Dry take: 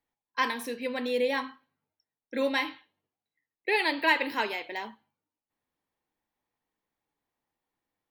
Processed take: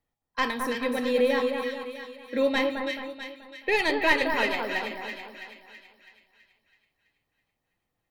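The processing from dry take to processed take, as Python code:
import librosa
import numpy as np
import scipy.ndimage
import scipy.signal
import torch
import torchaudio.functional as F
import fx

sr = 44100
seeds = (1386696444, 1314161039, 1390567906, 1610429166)

p1 = fx.tracing_dist(x, sr, depth_ms=0.028)
p2 = fx.low_shelf(p1, sr, hz=330.0, db=9.5)
p3 = p2 + 0.31 * np.pad(p2, (int(1.6 * sr / 1000.0), 0))[:len(p2)]
y = p3 + fx.echo_split(p3, sr, split_hz=1700.0, low_ms=216, high_ms=328, feedback_pct=52, wet_db=-4.5, dry=0)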